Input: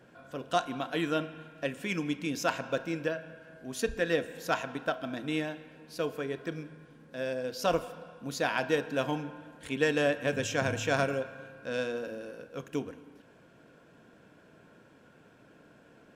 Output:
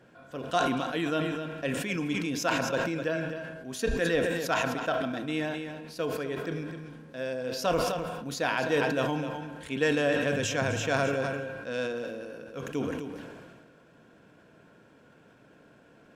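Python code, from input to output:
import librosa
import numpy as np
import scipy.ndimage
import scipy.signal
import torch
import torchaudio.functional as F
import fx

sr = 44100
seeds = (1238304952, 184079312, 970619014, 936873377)

p1 = fx.high_shelf(x, sr, hz=11000.0, db=-4.0)
p2 = p1 + fx.echo_single(p1, sr, ms=256, db=-12.0, dry=0)
y = fx.sustainer(p2, sr, db_per_s=31.0)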